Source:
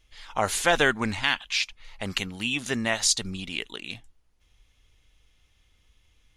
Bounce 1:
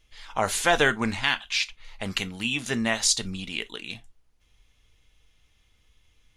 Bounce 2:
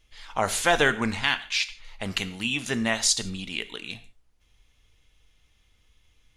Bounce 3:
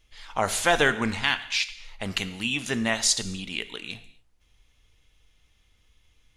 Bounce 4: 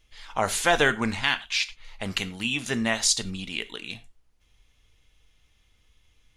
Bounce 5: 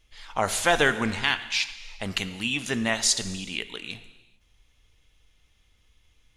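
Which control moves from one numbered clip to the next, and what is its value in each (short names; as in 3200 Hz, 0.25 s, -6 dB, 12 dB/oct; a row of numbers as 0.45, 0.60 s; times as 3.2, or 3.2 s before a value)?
non-linear reverb, gate: 80, 190, 290, 130, 470 ms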